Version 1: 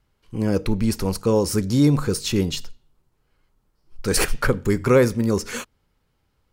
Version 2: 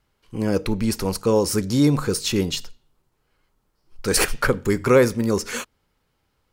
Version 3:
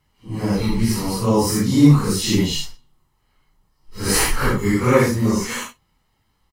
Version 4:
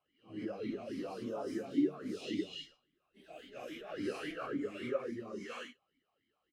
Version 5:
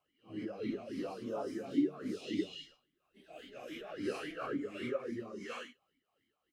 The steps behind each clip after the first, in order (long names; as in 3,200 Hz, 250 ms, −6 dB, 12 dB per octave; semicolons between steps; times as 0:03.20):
low-shelf EQ 220 Hz −6 dB; level +2 dB
random phases in long frames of 200 ms; comb filter 1 ms, depth 49%; level +2.5 dB
downward compressor 10 to 1, threshold −25 dBFS, peak gain reduction 18.5 dB; delay with pitch and tempo change per echo 389 ms, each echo +4 semitones, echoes 3, each echo −6 dB; formant filter swept between two vowels a-i 3.6 Hz; level +1 dB
amplitude tremolo 2.9 Hz, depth 41%; level +2 dB